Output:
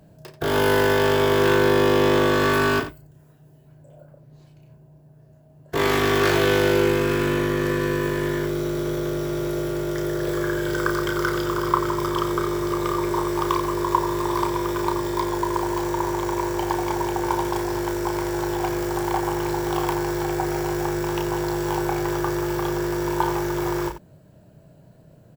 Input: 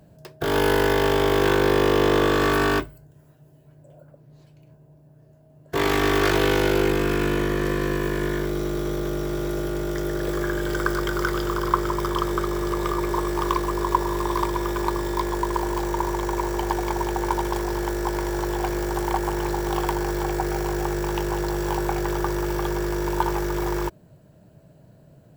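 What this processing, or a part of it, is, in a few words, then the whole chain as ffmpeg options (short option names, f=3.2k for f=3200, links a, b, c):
slapback doubling: -filter_complex "[0:a]asplit=3[a][b][c];[b]adelay=32,volume=-6dB[d];[c]adelay=88,volume=-12dB[e];[a][d][e]amix=inputs=3:normalize=0"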